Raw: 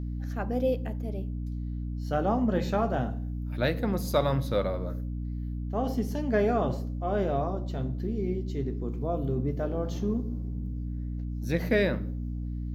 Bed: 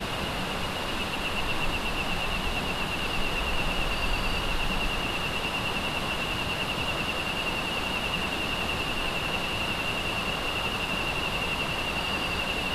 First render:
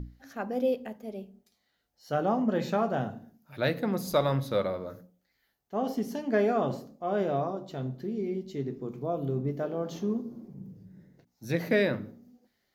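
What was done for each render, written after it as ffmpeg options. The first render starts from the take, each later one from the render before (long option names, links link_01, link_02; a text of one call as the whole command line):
ffmpeg -i in.wav -af "bandreject=frequency=60:width_type=h:width=6,bandreject=frequency=120:width_type=h:width=6,bandreject=frequency=180:width_type=h:width=6,bandreject=frequency=240:width_type=h:width=6,bandreject=frequency=300:width_type=h:width=6" out.wav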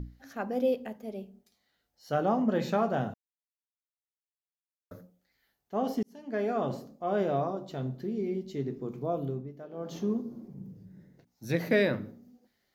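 ffmpeg -i in.wav -filter_complex "[0:a]asplit=6[link_01][link_02][link_03][link_04][link_05][link_06];[link_01]atrim=end=3.14,asetpts=PTS-STARTPTS,afade=type=out:start_time=3.136:duration=0.004:curve=hsin[link_07];[link_02]atrim=start=3.14:end=4.91,asetpts=PTS-STARTPTS,volume=0[link_08];[link_03]atrim=start=4.91:end=6.03,asetpts=PTS-STARTPTS,afade=type=in:duration=0.004:curve=hsin,afade=type=out:start_time=1.116:duration=0.004:curve=hsin[link_09];[link_04]atrim=start=6.03:end=9.49,asetpts=PTS-STARTPTS,afade=type=in:duration=1.1:curve=qsin,afade=type=out:start_time=3.15:duration=0.31:silence=0.223872[link_10];[link_05]atrim=start=9.49:end=9.69,asetpts=PTS-STARTPTS,volume=-13dB[link_11];[link_06]atrim=start=9.69,asetpts=PTS-STARTPTS,afade=type=in:duration=0.31:silence=0.223872[link_12];[link_07][link_08][link_09][link_10][link_11][link_12]concat=n=6:v=0:a=1" out.wav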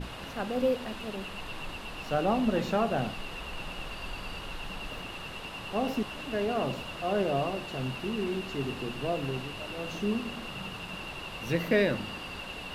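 ffmpeg -i in.wav -i bed.wav -filter_complex "[1:a]volume=-11dB[link_01];[0:a][link_01]amix=inputs=2:normalize=0" out.wav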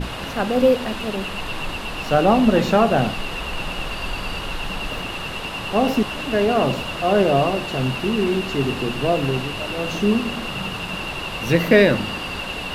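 ffmpeg -i in.wav -af "volume=11.5dB" out.wav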